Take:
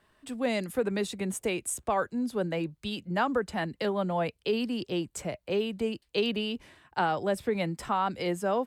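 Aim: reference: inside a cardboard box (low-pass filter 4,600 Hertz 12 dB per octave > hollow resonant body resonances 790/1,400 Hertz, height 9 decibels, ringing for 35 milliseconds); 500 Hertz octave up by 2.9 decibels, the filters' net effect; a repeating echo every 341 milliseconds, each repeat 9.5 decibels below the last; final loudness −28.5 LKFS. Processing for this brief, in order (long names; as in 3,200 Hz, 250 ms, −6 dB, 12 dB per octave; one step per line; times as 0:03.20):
low-pass filter 4,600 Hz 12 dB per octave
parametric band 500 Hz +3.5 dB
repeating echo 341 ms, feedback 33%, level −9.5 dB
hollow resonant body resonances 790/1,400 Hz, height 9 dB, ringing for 35 ms
level −1 dB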